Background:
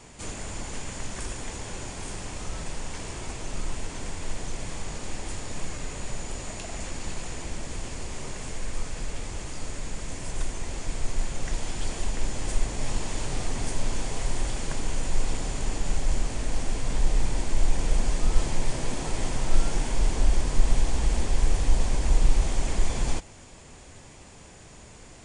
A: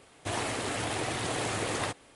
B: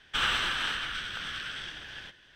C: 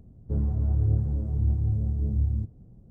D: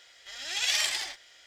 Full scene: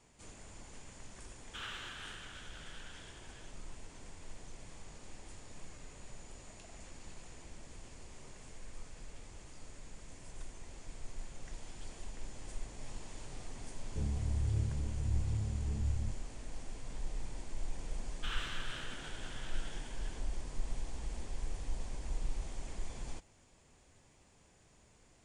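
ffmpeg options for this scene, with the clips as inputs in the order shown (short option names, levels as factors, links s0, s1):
-filter_complex "[2:a]asplit=2[s0][s1];[0:a]volume=0.141[s2];[s1]highpass=f=860:w=0.5412,highpass=f=860:w=1.3066[s3];[s0]atrim=end=2.35,asetpts=PTS-STARTPTS,volume=0.141,afade=t=in:d=0.004:c=hsin,afade=t=out:st=2.346:d=0.004:c=hsin,adelay=1400[s4];[3:a]atrim=end=2.9,asetpts=PTS-STARTPTS,volume=0.316,afade=t=in:d=0.004:c=hsin,afade=t=out:st=2.896:d=0.004:c=hsin,adelay=13660[s5];[s3]atrim=end=2.35,asetpts=PTS-STARTPTS,volume=0.188,afade=t=in:d=0.004:c=hsin,afade=t=out:st=2.346:d=0.004:c=hsin,adelay=18090[s6];[s2][s4][s5][s6]amix=inputs=4:normalize=0"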